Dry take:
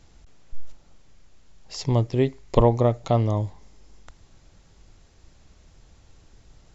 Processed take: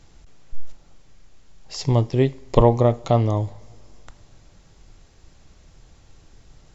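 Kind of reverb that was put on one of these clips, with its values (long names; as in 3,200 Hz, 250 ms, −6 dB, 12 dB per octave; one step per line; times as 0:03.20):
coupled-rooms reverb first 0.37 s, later 3.2 s, from −22 dB, DRR 14.5 dB
level +2.5 dB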